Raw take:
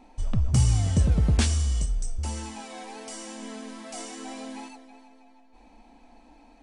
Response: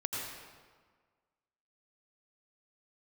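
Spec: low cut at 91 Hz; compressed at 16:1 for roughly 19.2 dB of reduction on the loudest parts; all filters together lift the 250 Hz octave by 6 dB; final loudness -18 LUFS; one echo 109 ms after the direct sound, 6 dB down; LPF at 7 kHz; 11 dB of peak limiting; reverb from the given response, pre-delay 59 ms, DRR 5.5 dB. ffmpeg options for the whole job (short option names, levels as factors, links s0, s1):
-filter_complex "[0:a]highpass=91,lowpass=7000,equalizer=f=250:t=o:g=8,acompressor=threshold=0.0178:ratio=16,alimiter=level_in=2.99:limit=0.0631:level=0:latency=1,volume=0.335,aecho=1:1:109:0.501,asplit=2[s0][s1];[1:a]atrim=start_sample=2205,adelay=59[s2];[s1][s2]afir=irnorm=-1:irlink=0,volume=0.335[s3];[s0][s3]amix=inputs=2:normalize=0,volume=15"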